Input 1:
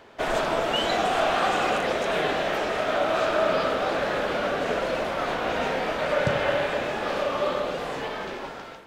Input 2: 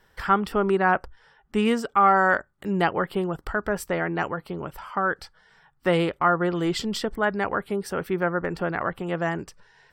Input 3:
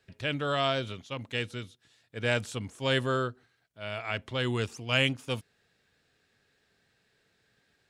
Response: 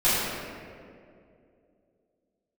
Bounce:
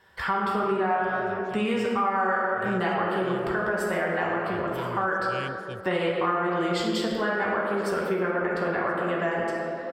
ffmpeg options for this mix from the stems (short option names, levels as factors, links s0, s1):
-filter_complex "[1:a]highpass=f=430:p=1,highshelf=f=7600:g=-8,bandreject=f=5800:w=11,volume=1.12,asplit=3[s0][s1][s2];[s1]volume=0.211[s3];[s2]volume=0.0794[s4];[2:a]adelay=400,volume=0.251[s5];[s0][s5]amix=inputs=2:normalize=0,equalizer=f=66:w=0.74:g=14,alimiter=limit=0.126:level=0:latency=1:release=296,volume=1[s6];[3:a]atrim=start_sample=2205[s7];[s3][s7]afir=irnorm=-1:irlink=0[s8];[s4]aecho=0:1:1025:1[s9];[s6][s8][s9]amix=inputs=3:normalize=0,acompressor=threshold=0.0708:ratio=4"